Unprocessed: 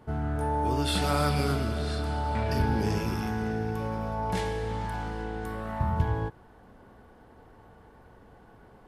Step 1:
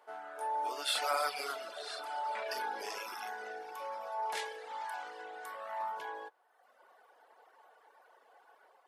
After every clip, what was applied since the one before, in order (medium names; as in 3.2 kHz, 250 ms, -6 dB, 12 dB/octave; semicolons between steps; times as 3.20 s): reverb removal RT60 1.2 s; high-pass 560 Hz 24 dB/octave; level rider gain up to 3 dB; trim -4 dB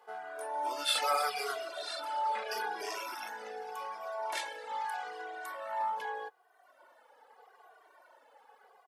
endless flanger 2 ms -0.81 Hz; trim +5.5 dB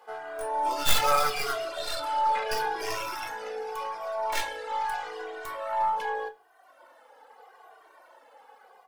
tracing distortion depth 0.16 ms; on a send at -6 dB: reverberation RT60 0.35 s, pre-delay 4 ms; on the sum: trim +5.5 dB